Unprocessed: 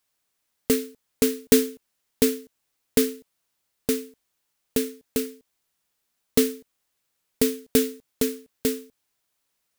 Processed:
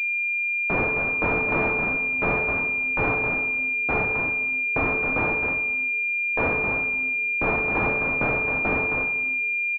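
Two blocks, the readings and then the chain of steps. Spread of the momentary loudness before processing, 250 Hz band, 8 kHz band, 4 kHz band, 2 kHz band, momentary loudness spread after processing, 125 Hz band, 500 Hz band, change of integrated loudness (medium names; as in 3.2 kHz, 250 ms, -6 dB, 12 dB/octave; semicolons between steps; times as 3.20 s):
15 LU, -5.0 dB, under -30 dB, under -15 dB, +22.0 dB, 1 LU, +8.0 dB, -2.0 dB, +3.5 dB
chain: tilt EQ +4.5 dB/octave; transient shaper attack -11 dB, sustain +8 dB; waveshaping leveller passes 3; bass shelf 480 Hz -4.5 dB; simulated room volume 2100 m³, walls mixed, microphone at 1.1 m; in parallel at -11 dB: word length cut 8-bit, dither none; on the sum: compression 4:1, threshold -15 dBFS, peak gain reduction 14.5 dB; on a send: delay 266 ms -10.5 dB; on the sum: class-D stage that switches slowly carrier 2.4 kHz; trim -3.5 dB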